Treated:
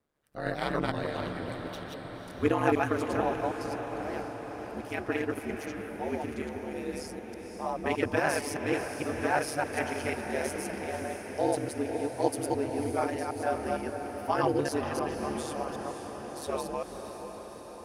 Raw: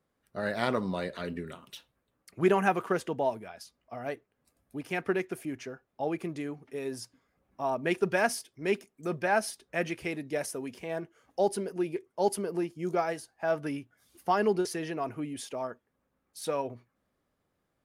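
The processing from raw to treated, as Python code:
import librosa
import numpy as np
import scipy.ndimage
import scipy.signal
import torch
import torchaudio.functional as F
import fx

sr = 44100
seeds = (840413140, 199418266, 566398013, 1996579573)

y = fx.reverse_delay(x, sr, ms=153, wet_db=-1.0)
y = y * np.sin(2.0 * np.pi * 73.0 * np.arange(len(y)) / sr)
y = fx.echo_diffused(y, sr, ms=531, feedback_pct=68, wet_db=-8)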